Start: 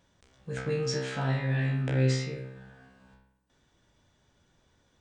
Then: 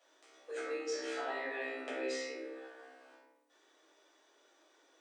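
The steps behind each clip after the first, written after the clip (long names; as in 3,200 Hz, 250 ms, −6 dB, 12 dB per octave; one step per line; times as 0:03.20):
Butterworth high-pass 290 Hz 96 dB per octave
downward compressor 2 to 1, threshold −45 dBFS, peak gain reduction 9.5 dB
rectangular room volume 530 cubic metres, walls furnished, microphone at 6.4 metres
level −5.5 dB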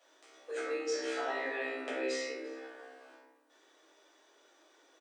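slap from a distant wall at 59 metres, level −17 dB
level +3 dB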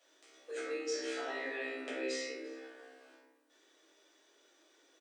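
parametric band 910 Hz −7.5 dB 1.6 octaves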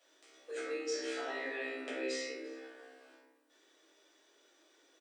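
notch filter 6,400 Hz, Q 29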